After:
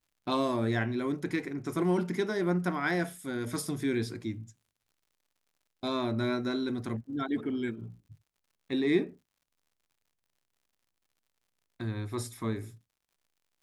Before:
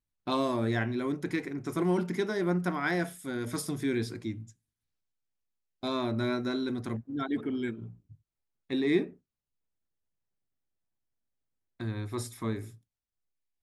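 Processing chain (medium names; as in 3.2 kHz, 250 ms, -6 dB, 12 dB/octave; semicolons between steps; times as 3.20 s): crackle 96 per s -59 dBFS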